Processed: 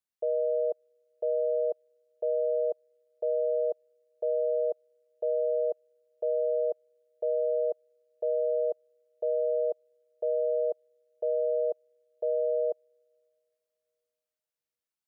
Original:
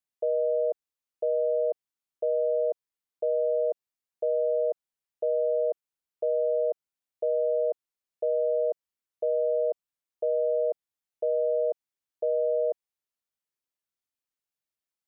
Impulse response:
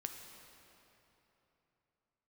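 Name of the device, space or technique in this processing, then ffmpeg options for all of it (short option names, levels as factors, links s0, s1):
keyed gated reverb: -filter_complex "[0:a]asplit=3[s0][s1][s2];[1:a]atrim=start_sample=2205[s3];[s1][s3]afir=irnorm=-1:irlink=0[s4];[s2]apad=whole_len=664726[s5];[s4][s5]sidechaingate=range=0.0178:threshold=0.0794:ratio=16:detection=peak,volume=1.33[s6];[s0][s6]amix=inputs=2:normalize=0,volume=0.75"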